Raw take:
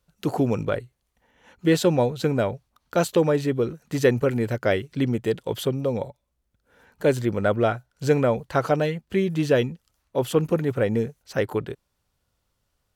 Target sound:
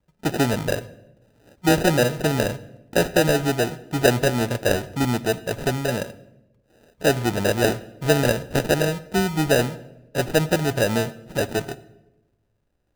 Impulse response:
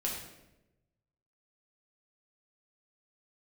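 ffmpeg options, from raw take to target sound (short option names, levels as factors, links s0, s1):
-filter_complex "[0:a]acrusher=samples=40:mix=1:aa=0.000001,asplit=2[s0][s1];[1:a]atrim=start_sample=2205[s2];[s1][s2]afir=irnorm=-1:irlink=0,volume=0.168[s3];[s0][s3]amix=inputs=2:normalize=0"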